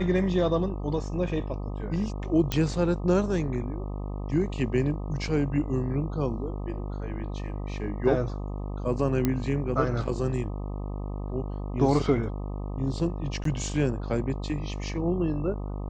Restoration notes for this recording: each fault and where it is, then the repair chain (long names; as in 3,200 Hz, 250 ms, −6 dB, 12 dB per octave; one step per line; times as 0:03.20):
mains buzz 50 Hz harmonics 25 −33 dBFS
0:02.52: click −11 dBFS
0:09.25: click −11 dBFS
0:13.44–0:13.45: drop-out 13 ms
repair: click removal
hum removal 50 Hz, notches 25
repair the gap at 0:13.44, 13 ms